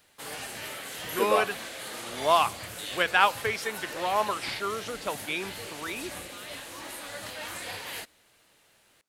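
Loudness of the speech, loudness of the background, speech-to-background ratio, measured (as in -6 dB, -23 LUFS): -28.0 LUFS, -37.5 LUFS, 9.5 dB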